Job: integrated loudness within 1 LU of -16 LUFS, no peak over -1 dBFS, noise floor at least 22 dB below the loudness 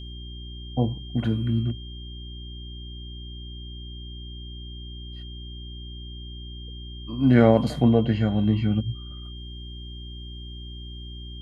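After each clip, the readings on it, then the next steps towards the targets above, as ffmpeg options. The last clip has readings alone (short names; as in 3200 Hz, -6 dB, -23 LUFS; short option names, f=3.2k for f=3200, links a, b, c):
hum 60 Hz; harmonics up to 360 Hz; hum level -36 dBFS; steady tone 3200 Hz; tone level -43 dBFS; loudness -23.0 LUFS; peak -4.0 dBFS; loudness target -16.0 LUFS
-> -af "bandreject=f=60:t=h:w=4,bandreject=f=120:t=h:w=4,bandreject=f=180:t=h:w=4,bandreject=f=240:t=h:w=4,bandreject=f=300:t=h:w=4,bandreject=f=360:t=h:w=4"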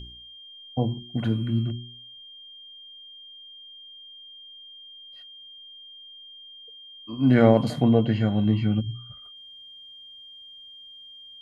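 hum none; steady tone 3200 Hz; tone level -43 dBFS
-> -af "bandreject=f=3.2k:w=30"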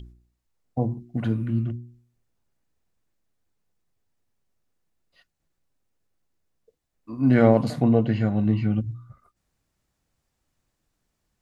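steady tone none; loudness -23.0 LUFS; peak -4.5 dBFS; loudness target -16.0 LUFS
-> -af "volume=7dB,alimiter=limit=-1dB:level=0:latency=1"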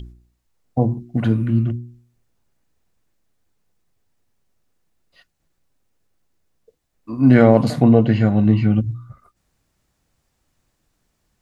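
loudness -16.5 LUFS; peak -1.0 dBFS; noise floor -71 dBFS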